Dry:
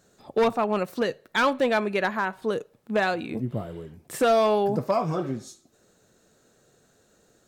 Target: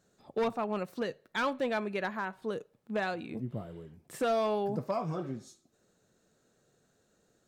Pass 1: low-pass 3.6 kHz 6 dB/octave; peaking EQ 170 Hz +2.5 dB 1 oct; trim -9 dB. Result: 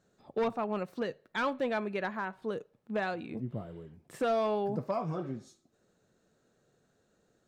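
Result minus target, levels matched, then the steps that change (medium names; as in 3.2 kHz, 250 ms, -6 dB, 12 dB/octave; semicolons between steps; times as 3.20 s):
8 kHz band -5.0 dB
change: low-pass 11 kHz 6 dB/octave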